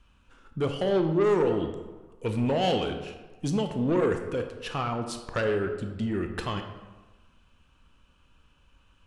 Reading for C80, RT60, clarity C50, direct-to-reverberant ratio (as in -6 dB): 9.5 dB, 1.3 s, 7.5 dB, 5.5 dB